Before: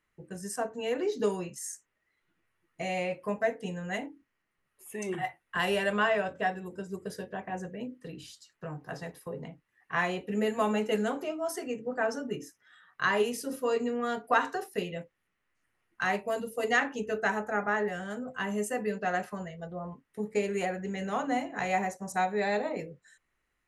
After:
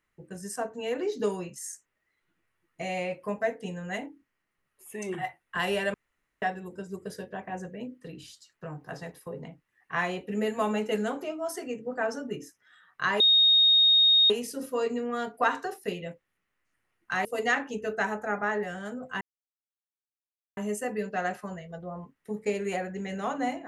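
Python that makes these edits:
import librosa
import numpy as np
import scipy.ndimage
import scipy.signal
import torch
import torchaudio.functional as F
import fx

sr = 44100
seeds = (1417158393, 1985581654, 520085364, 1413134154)

y = fx.edit(x, sr, fx.room_tone_fill(start_s=5.94, length_s=0.48),
    fx.insert_tone(at_s=13.2, length_s=1.1, hz=3720.0, db=-16.5),
    fx.cut(start_s=16.15, length_s=0.35),
    fx.insert_silence(at_s=18.46, length_s=1.36), tone=tone)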